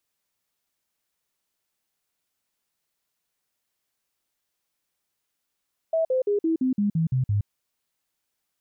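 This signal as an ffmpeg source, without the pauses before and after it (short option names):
-f lavfi -i "aevalsrc='0.106*clip(min(mod(t,0.17),0.12-mod(t,0.17))/0.005,0,1)*sin(2*PI*650*pow(2,-floor(t/0.17)/3)*mod(t,0.17))':d=1.53:s=44100"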